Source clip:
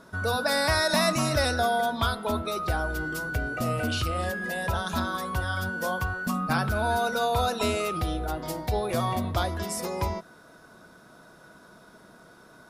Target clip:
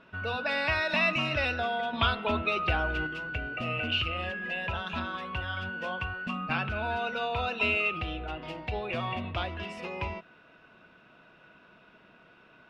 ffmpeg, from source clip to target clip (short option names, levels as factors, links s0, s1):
-filter_complex "[0:a]asettb=1/sr,asplit=3[s0][s1][s2];[s0]atrim=end=1.934[s3];[s1]atrim=start=1.93:end=3.07,asetpts=PTS-STARTPTS,afade=t=in:d=0.004:c=qsin,afade=t=out:st=1.136:d=0.004:c=qsin,acontrast=33[s4];[s2]atrim=start=3.066[s5];[s3][s4]acrossfade=d=0.004:c1=hsin:c2=qsin[s6];[s6][s5]acrossfade=d=0.004:c1=qsin:c2=hsin,lowpass=f=2700:t=q:w=10,volume=0.447"